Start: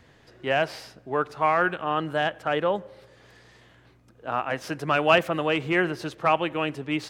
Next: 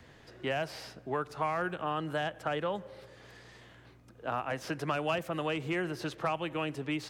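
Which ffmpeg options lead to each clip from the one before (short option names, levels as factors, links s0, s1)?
-filter_complex "[0:a]acrossover=split=160|1000|5100[s0][s1][s2][s3];[s0]acompressor=threshold=0.00631:ratio=4[s4];[s1]acompressor=threshold=0.02:ratio=4[s5];[s2]acompressor=threshold=0.0126:ratio=4[s6];[s3]acompressor=threshold=0.00282:ratio=4[s7];[s4][s5][s6][s7]amix=inputs=4:normalize=0"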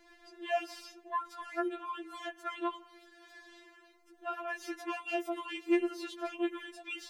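-af "afftfilt=real='re*4*eq(mod(b,16),0)':imag='im*4*eq(mod(b,16),0)':win_size=2048:overlap=0.75"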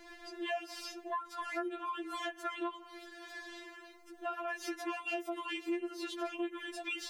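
-af "acompressor=threshold=0.00631:ratio=4,volume=2.37"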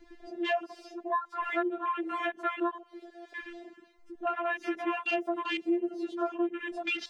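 -af "afwtdn=0.00631,equalizer=f=13000:t=o:w=0.78:g=-11,volume=2.37"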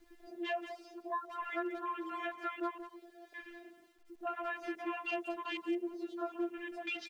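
-filter_complex "[0:a]acrusher=bits=10:mix=0:aa=0.000001,asplit=2[s0][s1];[s1]adelay=180,highpass=300,lowpass=3400,asoftclip=type=hard:threshold=0.0398,volume=0.355[s2];[s0][s2]amix=inputs=2:normalize=0,volume=0.422"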